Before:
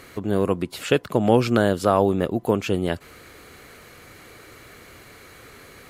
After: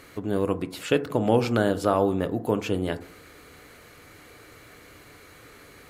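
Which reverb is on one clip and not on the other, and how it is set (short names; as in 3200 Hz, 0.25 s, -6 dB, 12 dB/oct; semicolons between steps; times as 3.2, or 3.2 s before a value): FDN reverb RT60 0.58 s, low-frequency decay 1.1×, high-frequency decay 0.3×, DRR 9.5 dB; gain -4 dB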